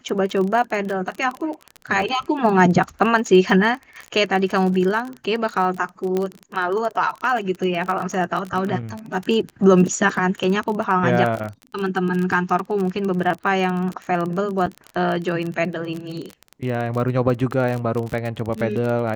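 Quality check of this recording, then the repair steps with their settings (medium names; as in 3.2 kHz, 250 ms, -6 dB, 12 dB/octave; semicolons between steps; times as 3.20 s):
crackle 29 per s -24 dBFS
6.17 s: pop -11 dBFS
14.66–14.67 s: dropout 5.9 ms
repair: de-click; interpolate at 14.66 s, 5.9 ms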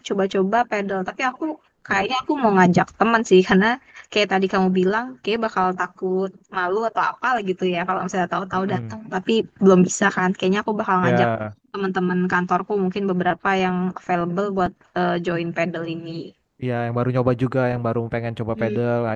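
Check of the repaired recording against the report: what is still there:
nothing left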